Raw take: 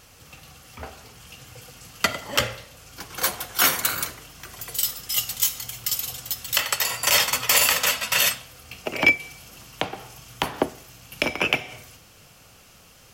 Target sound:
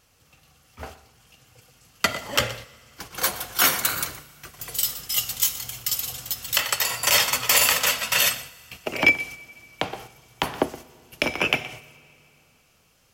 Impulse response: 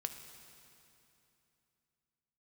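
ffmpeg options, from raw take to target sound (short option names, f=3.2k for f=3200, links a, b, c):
-filter_complex "[0:a]agate=range=-11dB:threshold=-40dB:ratio=16:detection=peak,asplit=2[a][b];[1:a]atrim=start_sample=2205,adelay=121[c];[b][c]afir=irnorm=-1:irlink=0,volume=-15.5dB[d];[a][d]amix=inputs=2:normalize=0"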